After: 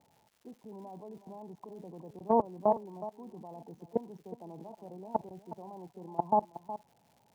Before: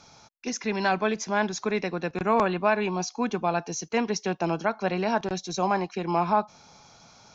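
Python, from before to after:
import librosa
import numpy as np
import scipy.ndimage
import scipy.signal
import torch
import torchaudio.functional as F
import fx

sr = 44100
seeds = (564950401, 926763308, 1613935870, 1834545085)

p1 = scipy.signal.sosfilt(scipy.signal.ellip(4, 1.0, 40, 930.0, 'lowpass', fs=sr, output='sos'), x)
p2 = fx.level_steps(p1, sr, step_db=23)
p3 = scipy.signal.sosfilt(scipy.signal.butter(2, 75.0, 'highpass', fs=sr, output='sos'), p2)
p4 = p3 + fx.echo_single(p3, sr, ms=367, db=-14.0, dry=0)
y = fx.dmg_crackle(p4, sr, seeds[0], per_s=280.0, level_db=-55.0)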